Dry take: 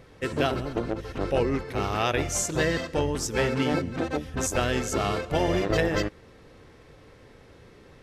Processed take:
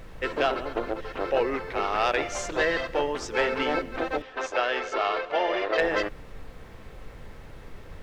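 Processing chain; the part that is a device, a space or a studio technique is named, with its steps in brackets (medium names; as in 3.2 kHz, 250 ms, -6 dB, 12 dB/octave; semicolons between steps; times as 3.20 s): aircraft cabin announcement (band-pass 480–3300 Hz; saturation -17.5 dBFS, distortion -20 dB; brown noise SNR 13 dB); 4.22–5.78 s: three-band isolator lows -16 dB, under 330 Hz, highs -17 dB, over 5.9 kHz; trim +4.5 dB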